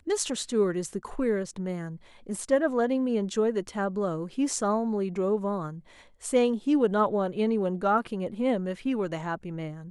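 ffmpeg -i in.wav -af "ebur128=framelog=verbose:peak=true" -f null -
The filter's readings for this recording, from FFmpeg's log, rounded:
Integrated loudness:
  I:         -27.9 LUFS
  Threshold: -38.1 LUFS
Loudness range:
  LRA:         2.1 LU
  Threshold: -47.7 LUFS
  LRA low:   -28.8 LUFS
  LRA high:  -26.7 LUFS
True peak:
  Peak:      -11.5 dBFS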